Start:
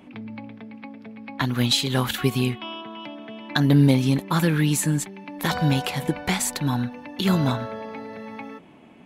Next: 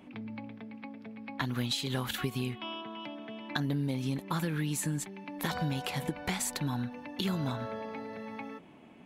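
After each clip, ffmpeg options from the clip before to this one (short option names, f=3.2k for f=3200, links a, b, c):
-af "acompressor=threshold=-24dB:ratio=6,volume=-5dB"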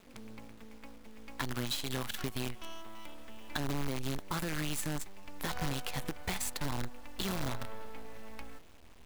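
-af "acrusher=bits=6:dc=4:mix=0:aa=0.000001,asubboost=boost=4.5:cutoff=74,volume=-3.5dB"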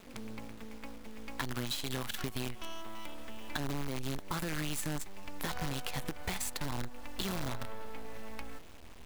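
-af "acompressor=threshold=-39dB:ratio=3,volume=5dB"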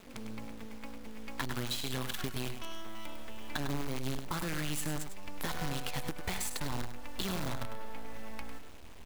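-af "aecho=1:1:101:0.355"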